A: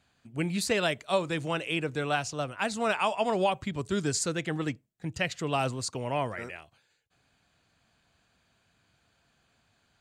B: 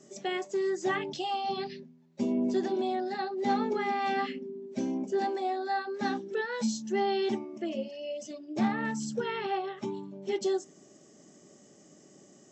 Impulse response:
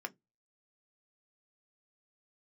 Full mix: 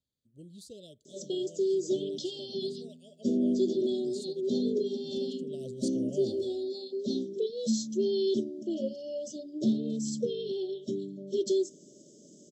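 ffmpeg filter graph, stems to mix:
-filter_complex "[0:a]volume=-7dB,afade=type=in:start_time=5.37:duration=0.66:silence=0.251189[link_01];[1:a]highpass=110,adelay=1050,volume=2dB[link_02];[link_01][link_02]amix=inputs=2:normalize=0,asuperstop=centerf=1400:order=20:qfactor=0.54"

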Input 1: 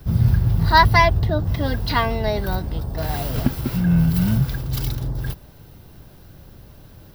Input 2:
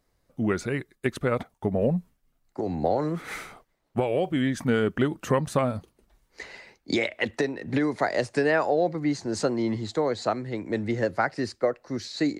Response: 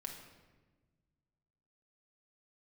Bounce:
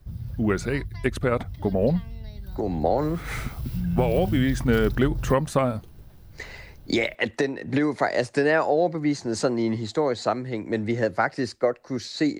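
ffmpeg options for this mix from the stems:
-filter_complex "[0:a]lowshelf=frequency=130:gain=10.5,acrossover=split=270|2100[link_01][link_02][link_03];[link_01]acompressor=threshold=-14dB:ratio=4[link_04];[link_02]acompressor=threshold=-39dB:ratio=4[link_05];[link_03]acompressor=threshold=-33dB:ratio=4[link_06];[link_04][link_05][link_06]amix=inputs=3:normalize=0,volume=-9.5dB,afade=type=in:start_time=3.22:duration=0.49:silence=0.375837[link_07];[1:a]volume=2dB[link_08];[link_07][link_08]amix=inputs=2:normalize=0"

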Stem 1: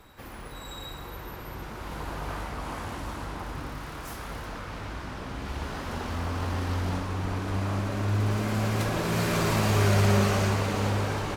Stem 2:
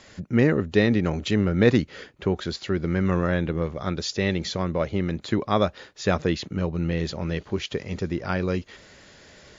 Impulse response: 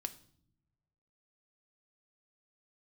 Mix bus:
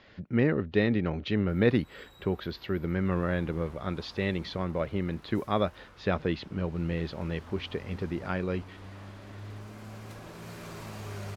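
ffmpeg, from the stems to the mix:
-filter_complex "[0:a]adelay=1300,volume=-17dB[link_01];[1:a]lowpass=frequency=4000:width=0.5412,lowpass=frequency=4000:width=1.3066,volume=-5.5dB[link_02];[link_01][link_02]amix=inputs=2:normalize=0"

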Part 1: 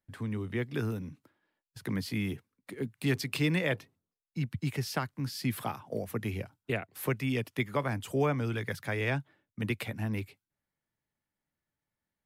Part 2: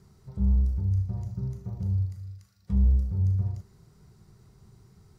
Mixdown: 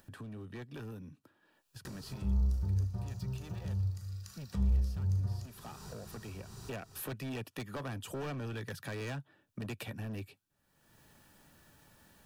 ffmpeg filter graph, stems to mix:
ffmpeg -i stem1.wav -i stem2.wav -filter_complex "[0:a]asoftclip=type=hard:threshold=-31.5dB,volume=-7dB,afade=type=in:start_time=6.31:duration=0.69:silence=0.251189,asplit=2[link_01][link_02];[1:a]tiltshelf=frequency=720:gain=-6,adelay=1850,volume=1dB[link_03];[link_02]apad=whole_len=310165[link_04];[link_03][link_04]sidechaincompress=threshold=-55dB:ratio=3:attack=16:release=752[link_05];[link_01][link_05]amix=inputs=2:normalize=0,acompressor=mode=upward:threshold=-35dB:ratio=2.5,asuperstop=centerf=2100:order=4:qfactor=6.9" out.wav

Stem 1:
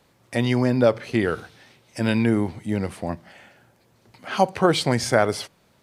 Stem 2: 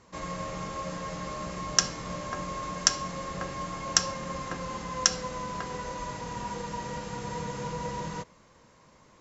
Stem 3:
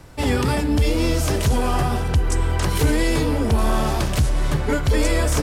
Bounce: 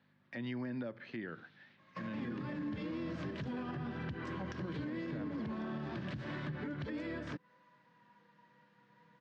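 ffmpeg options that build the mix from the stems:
ffmpeg -i stem1.wav -i stem2.wav -i stem3.wav -filter_complex "[0:a]aeval=exprs='val(0)+0.00316*(sin(2*PI*50*n/s)+sin(2*PI*2*50*n/s)/2+sin(2*PI*3*50*n/s)/3+sin(2*PI*4*50*n/s)/4+sin(2*PI*5*50*n/s)/5)':channel_layout=same,volume=-13dB,asplit=2[link_01][link_02];[1:a]adelay=1650,volume=-1dB[link_03];[2:a]dynaudnorm=framelen=370:gausssize=3:maxgain=6dB,adelay=1950,volume=-11.5dB[link_04];[link_02]apad=whole_len=478807[link_05];[link_03][link_05]sidechaingate=range=-28dB:threshold=-56dB:ratio=16:detection=peak[link_06];[link_01][link_06][link_04]amix=inputs=3:normalize=0,highpass=frequency=140:width=0.5412,highpass=frequency=140:width=1.3066,equalizer=frequency=440:width_type=q:width=4:gain=-8,equalizer=frequency=740:width_type=q:width=4:gain=-5,equalizer=frequency=1700:width_type=q:width=4:gain=9,lowpass=frequency=4000:width=0.5412,lowpass=frequency=4000:width=1.3066,acrossover=split=440[link_07][link_08];[link_08]acompressor=threshold=-42dB:ratio=6[link_09];[link_07][link_09]amix=inputs=2:normalize=0,alimiter=level_in=8.5dB:limit=-24dB:level=0:latency=1:release=132,volume=-8.5dB" out.wav

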